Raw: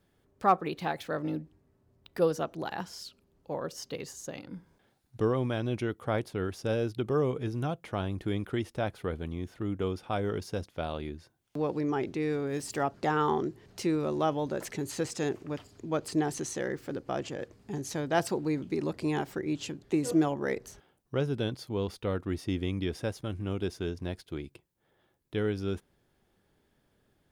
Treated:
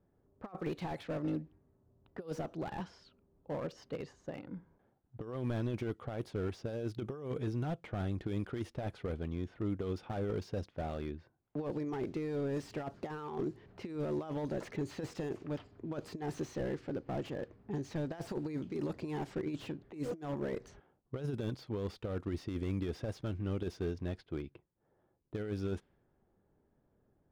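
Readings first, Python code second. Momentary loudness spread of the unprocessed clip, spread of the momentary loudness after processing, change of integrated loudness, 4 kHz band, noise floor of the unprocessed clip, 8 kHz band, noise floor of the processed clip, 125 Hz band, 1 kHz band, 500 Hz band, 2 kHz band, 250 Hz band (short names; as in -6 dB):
11 LU, 8 LU, -7.0 dB, -11.0 dB, -72 dBFS, -16.0 dB, -75 dBFS, -4.0 dB, -12.5 dB, -7.5 dB, -10.5 dB, -6.0 dB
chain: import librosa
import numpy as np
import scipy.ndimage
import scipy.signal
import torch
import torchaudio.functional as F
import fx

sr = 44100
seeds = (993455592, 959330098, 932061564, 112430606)

y = fx.env_lowpass(x, sr, base_hz=940.0, full_db=-26.5)
y = fx.over_compress(y, sr, threshold_db=-31.0, ratio=-0.5)
y = fx.slew_limit(y, sr, full_power_hz=18.0)
y = F.gain(torch.from_numpy(y), -4.0).numpy()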